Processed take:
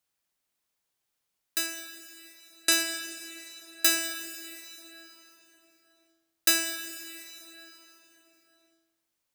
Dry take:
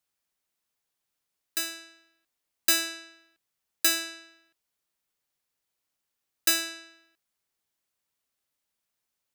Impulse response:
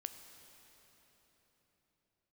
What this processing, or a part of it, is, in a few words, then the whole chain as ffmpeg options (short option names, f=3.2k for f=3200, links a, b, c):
cathedral: -filter_complex "[0:a]asettb=1/sr,asplit=3[a][b][c];[a]atrim=end=1.664[d];[b]atrim=start=1.66:end=2.72,asetpts=PTS-STARTPTS,afade=t=in:d=0.004:c=qsin,afade=t=out:st=1.056:d=0.004:c=qsin,lowpass=f=11k:w=0.5412,lowpass=f=11k:w=1.3066[e];[c]atrim=start=2.716[f];[d][e]acrossfade=d=0.004:c1=hsin:c2=qsin[g];[g][f]acrossfade=d=0.004:c1=qsin:c2=hsin[h];[1:a]atrim=start_sample=2205[i];[h][i]afir=irnorm=-1:irlink=0,volume=4.5dB"